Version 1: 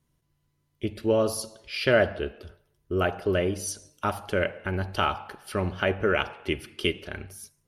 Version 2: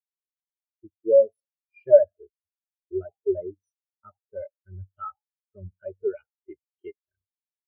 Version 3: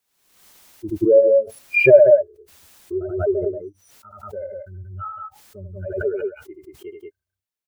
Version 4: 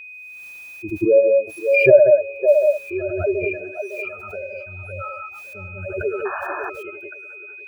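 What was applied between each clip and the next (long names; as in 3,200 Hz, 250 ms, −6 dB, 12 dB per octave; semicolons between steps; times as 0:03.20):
parametric band 2,100 Hz +4.5 dB 0.58 octaves; leveller curve on the samples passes 2; every bin expanded away from the loudest bin 4 to 1; level +3 dB
on a send: loudspeakers that aren't time-aligned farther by 27 metres −5 dB, 63 metres −3 dB; on the sum: background raised ahead of every attack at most 59 dB per second; level +2.5 dB
echo through a band-pass that steps 556 ms, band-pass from 680 Hz, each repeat 0.7 octaves, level −3.5 dB; sound drawn into the spectrogram noise, 0:06.25–0:06.70, 640–1,800 Hz −28 dBFS; steady tone 2,500 Hz −35 dBFS; level −1 dB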